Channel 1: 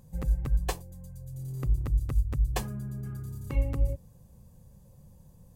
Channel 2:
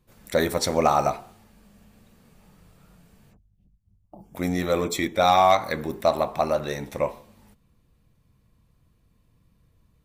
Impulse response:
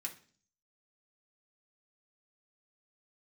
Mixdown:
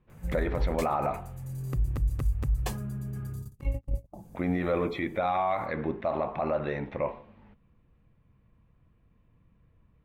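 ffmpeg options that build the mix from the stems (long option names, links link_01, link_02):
-filter_complex "[0:a]adelay=100,volume=1dB[link_01];[1:a]lowpass=frequency=2700:width=0.5412,lowpass=frequency=2700:width=1.3066,volume=-0.5dB,asplit=2[link_02][link_03];[link_03]apad=whole_len=249468[link_04];[link_01][link_04]sidechaingate=range=-44dB:threshold=-60dB:ratio=16:detection=peak[link_05];[link_05][link_02]amix=inputs=2:normalize=0,alimiter=limit=-19dB:level=0:latency=1:release=46"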